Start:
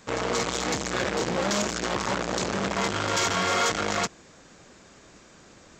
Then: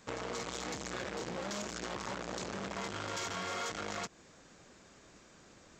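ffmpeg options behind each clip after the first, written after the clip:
-af "acompressor=threshold=-29dB:ratio=6,volume=-7dB"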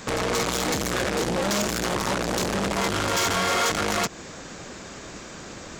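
-af "aeval=exprs='0.0422*sin(PI/2*2.51*val(0)/0.0422)':c=same,volume=7.5dB"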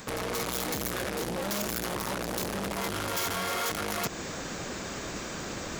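-af "areverse,acompressor=threshold=-33dB:ratio=12,areverse,aexciter=amount=4.3:drive=2.7:freq=10k,volume=3dB"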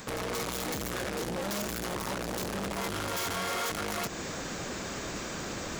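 -af "asoftclip=type=hard:threshold=-30dB"

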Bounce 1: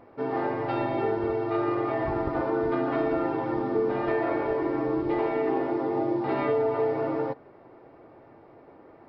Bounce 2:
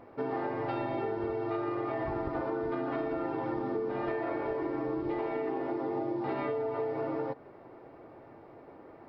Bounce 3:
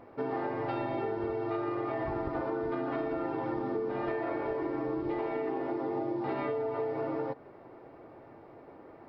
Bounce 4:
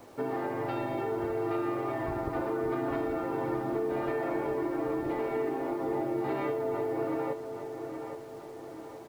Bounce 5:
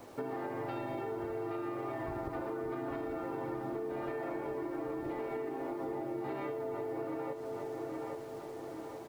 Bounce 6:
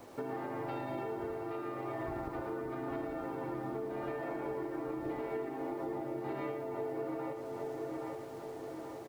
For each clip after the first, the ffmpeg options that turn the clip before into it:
-af "acompressor=threshold=-30dB:ratio=6"
-af anull
-filter_complex "[0:a]acrossover=split=270|750|980[a][b][c][d];[c]alimiter=level_in=18dB:limit=-24dB:level=0:latency=1,volume=-18dB[e];[a][b][e][d]amix=inputs=4:normalize=0,acrusher=bits=9:mix=0:aa=0.000001,asplit=2[f][g];[g]adelay=823,lowpass=f=4.5k:p=1,volume=-8dB,asplit=2[h][i];[i]adelay=823,lowpass=f=4.5k:p=1,volume=0.49,asplit=2[j][k];[k]adelay=823,lowpass=f=4.5k:p=1,volume=0.49,asplit=2[l][m];[m]adelay=823,lowpass=f=4.5k:p=1,volume=0.49,asplit=2[n][o];[o]adelay=823,lowpass=f=4.5k:p=1,volume=0.49,asplit=2[p][q];[q]adelay=823,lowpass=f=4.5k:p=1,volume=0.49[r];[f][h][j][l][n][p][r]amix=inputs=7:normalize=0,volume=1dB"
-af "acompressor=threshold=-35dB:ratio=6"
-af "aecho=1:1:114:0.398,volume=-1dB"

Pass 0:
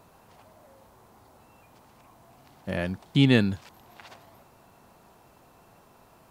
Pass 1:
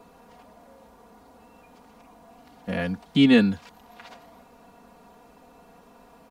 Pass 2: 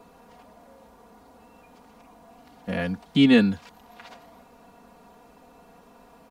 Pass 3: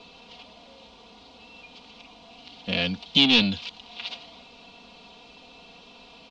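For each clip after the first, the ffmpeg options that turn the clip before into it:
-filter_complex "[0:a]highshelf=f=7.1k:g=-6.5,aecho=1:1:4.2:0.93,acrossover=split=210|580|1900[a][b][c][d];[b]acompressor=mode=upward:threshold=-51dB:ratio=2.5[e];[a][e][c][d]amix=inputs=4:normalize=0"
-af anull
-af "asoftclip=type=tanh:threshold=-20.5dB,aexciter=amount=13.3:drive=6.9:freq=2.7k,lowpass=f=3.5k:w=0.5412,lowpass=f=3.5k:w=1.3066"

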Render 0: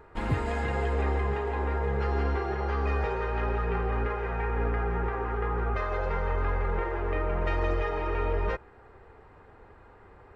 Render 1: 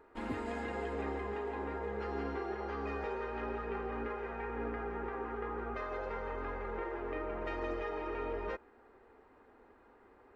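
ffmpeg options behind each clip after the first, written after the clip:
-af "lowshelf=f=190:t=q:w=3:g=-8,volume=-8.5dB"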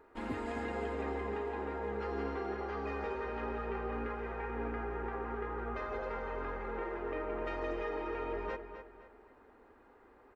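-filter_complex "[0:a]asplit=2[a][b];[b]adelay=257,lowpass=f=4.9k:p=1,volume=-9.5dB,asplit=2[c][d];[d]adelay=257,lowpass=f=4.9k:p=1,volume=0.39,asplit=2[e][f];[f]adelay=257,lowpass=f=4.9k:p=1,volume=0.39,asplit=2[g][h];[h]adelay=257,lowpass=f=4.9k:p=1,volume=0.39[i];[a][c][e][g][i]amix=inputs=5:normalize=0"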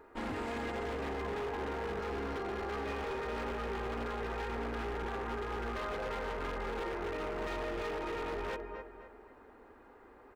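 -af "alimiter=level_in=6.5dB:limit=-24dB:level=0:latency=1:release=69,volume=-6.5dB,aeval=exprs='0.0158*(abs(mod(val(0)/0.0158+3,4)-2)-1)':c=same,volume=4dB"

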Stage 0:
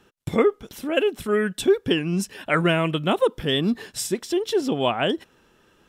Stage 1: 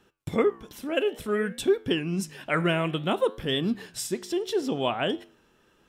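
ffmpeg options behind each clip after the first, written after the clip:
-af "flanger=delay=10:depth=8.2:regen=-86:speed=0.58:shape=sinusoidal"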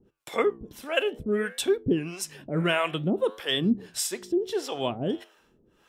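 -filter_complex "[0:a]acrossover=split=500[a][b];[a]aeval=exprs='val(0)*(1-1/2+1/2*cos(2*PI*1.6*n/s))':c=same[c];[b]aeval=exprs='val(0)*(1-1/2-1/2*cos(2*PI*1.6*n/s))':c=same[d];[c][d]amix=inputs=2:normalize=0,volume=5dB"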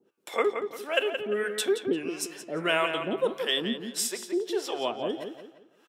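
-filter_complex "[0:a]highpass=360,asplit=2[a][b];[b]adelay=173,lowpass=f=4.1k:p=1,volume=-7dB,asplit=2[c][d];[d]adelay=173,lowpass=f=4.1k:p=1,volume=0.36,asplit=2[e][f];[f]adelay=173,lowpass=f=4.1k:p=1,volume=0.36,asplit=2[g][h];[h]adelay=173,lowpass=f=4.1k:p=1,volume=0.36[i];[c][e][g][i]amix=inputs=4:normalize=0[j];[a][j]amix=inputs=2:normalize=0"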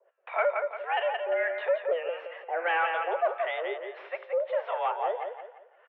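-filter_complex "[0:a]crystalizer=i=1:c=0,asplit=2[a][b];[b]highpass=f=720:p=1,volume=19dB,asoftclip=type=tanh:threshold=-9dB[c];[a][c]amix=inputs=2:normalize=0,lowpass=f=1.5k:p=1,volume=-6dB,highpass=f=210:t=q:w=0.5412,highpass=f=210:t=q:w=1.307,lowpass=f=2.4k:t=q:w=0.5176,lowpass=f=2.4k:t=q:w=0.7071,lowpass=f=2.4k:t=q:w=1.932,afreqshift=170,volume=-5.5dB"

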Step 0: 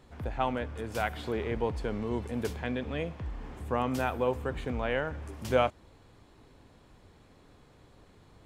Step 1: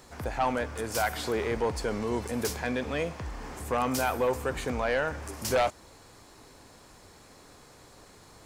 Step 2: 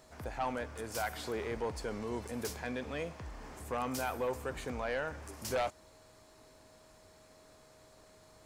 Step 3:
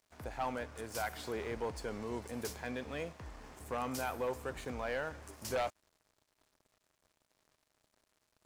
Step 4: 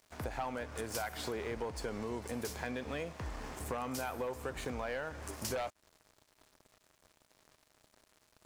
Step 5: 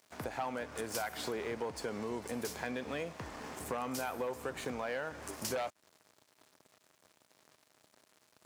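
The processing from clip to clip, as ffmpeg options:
-filter_complex "[0:a]aexciter=amount=5.2:drive=5:freq=4.7k,aeval=exprs='0.299*sin(PI/2*2.82*val(0)/0.299)':c=same,asplit=2[a][b];[b]highpass=f=720:p=1,volume=8dB,asoftclip=type=tanh:threshold=-10dB[c];[a][c]amix=inputs=2:normalize=0,lowpass=f=3.3k:p=1,volume=-6dB,volume=-8dB"
-af "aeval=exprs='val(0)+0.002*sin(2*PI*630*n/s)':c=same,volume=-8dB"
-af "aeval=exprs='sgn(val(0))*max(abs(val(0))-0.00178,0)':c=same,volume=-1dB"
-af "acompressor=threshold=-44dB:ratio=6,volume=8.5dB"
-af "highpass=130,volume=1dB"

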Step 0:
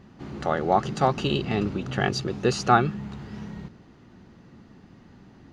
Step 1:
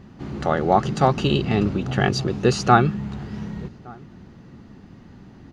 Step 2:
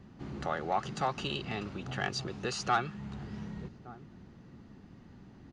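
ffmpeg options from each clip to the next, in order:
-filter_complex "[0:a]lowshelf=f=240:g=4.5,asplit=2[a][b];[b]adelay=1166,volume=-25dB,highshelf=f=4k:g=-26.2[c];[a][c]amix=inputs=2:normalize=0,volume=3dB"
-filter_complex "[0:a]acrossover=split=680|700[a][b][c];[a]acompressor=threshold=-28dB:ratio=6[d];[d][b][c]amix=inputs=3:normalize=0,asoftclip=type=tanh:threshold=-11dB,aresample=22050,aresample=44100,volume=-8.5dB"

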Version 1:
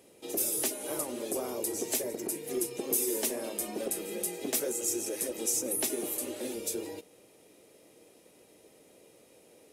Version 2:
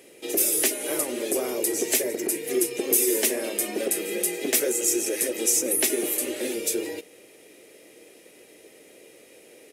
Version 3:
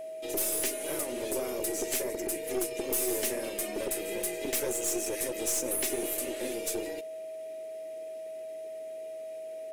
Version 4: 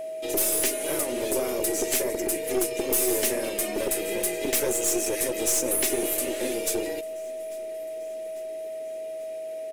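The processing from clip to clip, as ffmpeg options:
-af "firequalizer=gain_entry='entry(130,0);entry(360,9);entry(960,2);entry(1900,14);entry(3800,8)':delay=0.05:min_phase=1"
-af "aeval=exprs='(tanh(10*val(0)+0.45)-tanh(0.45))/10':c=same,aeval=exprs='val(0)+0.0224*sin(2*PI*640*n/s)':c=same,volume=-4.5dB"
-af "aecho=1:1:845|1690|2535|3380:0.0668|0.0368|0.0202|0.0111,volume=6dB"

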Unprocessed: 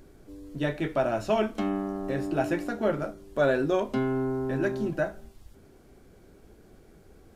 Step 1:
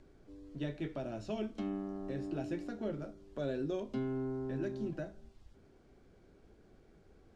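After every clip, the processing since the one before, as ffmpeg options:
-filter_complex "[0:a]lowpass=5.8k,acrossover=split=470|3000[a][b][c];[b]acompressor=threshold=-43dB:ratio=4[d];[a][d][c]amix=inputs=3:normalize=0,volume=-8dB"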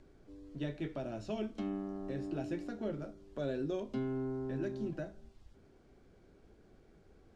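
-af anull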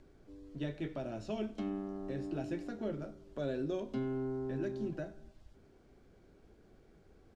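-af "aecho=1:1:94|188|282|376|470:0.0891|0.0526|0.031|0.0183|0.0108"

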